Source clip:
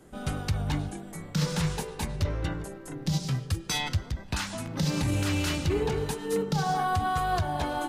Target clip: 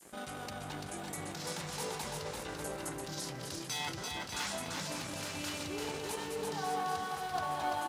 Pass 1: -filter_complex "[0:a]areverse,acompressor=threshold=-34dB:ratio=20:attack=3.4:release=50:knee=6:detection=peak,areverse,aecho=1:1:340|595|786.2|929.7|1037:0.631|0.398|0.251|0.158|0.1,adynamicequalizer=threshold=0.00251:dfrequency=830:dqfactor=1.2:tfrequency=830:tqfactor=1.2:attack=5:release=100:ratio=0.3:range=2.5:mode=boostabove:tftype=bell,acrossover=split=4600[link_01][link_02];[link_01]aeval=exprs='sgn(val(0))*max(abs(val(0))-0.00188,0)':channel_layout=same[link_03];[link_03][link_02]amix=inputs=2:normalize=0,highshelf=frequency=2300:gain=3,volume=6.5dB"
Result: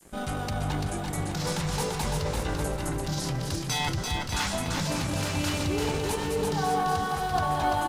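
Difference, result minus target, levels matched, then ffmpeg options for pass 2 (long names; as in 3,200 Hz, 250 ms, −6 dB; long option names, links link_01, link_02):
downward compressor: peak gain reduction −7 dB; 250 Hz band +2.5 dB
-filter_complex "[0:a]areverse,acompressor=threshold=-41.5dB:ratio=20:attack=3.4:release=50:knee=6:detection=peak,areverse,aecho=1:1:340|595|786.2|929.7|1037:0.631|0.398|0.251|0.158|0.1,adynamicequalizer=threshold=0.00251:dfrequency=830:dqfactor=1.2:tfrequency=830:tqfactor=1.2:attack=5:release=100:ratio=0.3:range=2.5:mode=boostabove:tftype=bell,acrossover=split=4600[link_01][link_02];[link_01]aeval=exprs='sgn(val(0))*max(abs(val(0))-0.00188,0)':channel_layout=same[link_03];[link_03][link_02]amix=inputs=2:normalize=0,highpass=frequency=330:poles=1,highshelf=frequency=2300:gain=3,volume=6.5dB"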